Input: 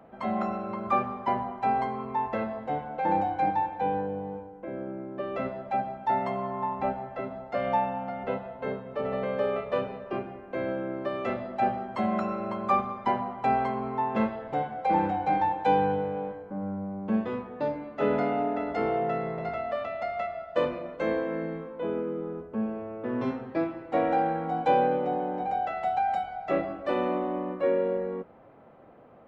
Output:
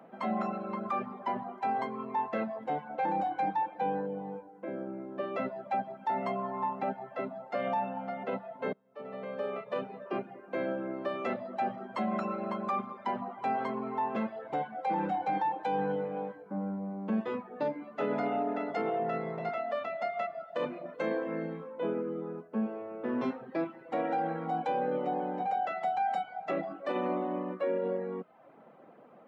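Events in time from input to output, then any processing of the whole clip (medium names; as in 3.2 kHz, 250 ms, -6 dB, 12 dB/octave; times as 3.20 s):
8.73–10.16 s: fade in, from -22 dB
whole clip: reverb removal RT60 0.57 s; Chebyshev high-pass 170 Hz, order 3; peak limiter -23 dBFS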